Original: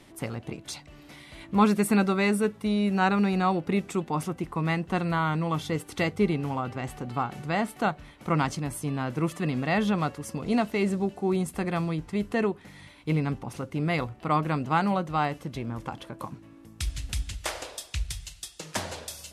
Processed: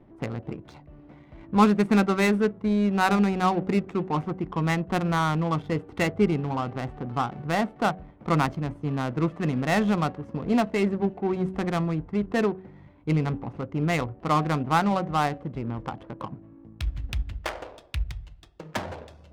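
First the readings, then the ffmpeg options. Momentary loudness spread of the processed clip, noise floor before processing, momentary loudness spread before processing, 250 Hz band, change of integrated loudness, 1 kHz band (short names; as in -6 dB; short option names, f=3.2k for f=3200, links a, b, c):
13 LU, -51 dBFS, 14 LU, +2.0 dB, +2.0 dB, +2.0 dB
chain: -af "bandreject=f=94.02:t=h:w=4,bandreject=f=188.04:t=h:w=4,bandreject=f=282.06:t=h:w=4,bandreject=f=376.08:t=h:w=4,bandreject=f=470.1:t=h:w=4,bandreject=f=564.12:t=h:w=4,bandreject=f=658.14:t=h:w=4,bandreject=f=752.16:t=h:w=4,adynamicsmooth=sensitivity=4:basefreq=720,volume=2.5dB"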